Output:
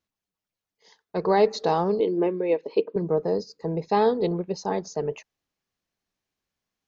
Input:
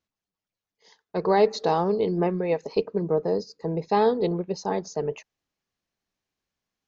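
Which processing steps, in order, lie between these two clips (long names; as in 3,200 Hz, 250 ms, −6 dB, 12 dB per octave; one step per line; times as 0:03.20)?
0:02.00–0:02.96: loudspeaker in its box 290–3,700 Hz, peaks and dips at 320 Hz +7 dB, 490 Hz +3 dB, 750 Hz −8 dB, 1,300 Hz −8 dB, 1,800 Hz −4 dB, 3,200 Hz +3 dB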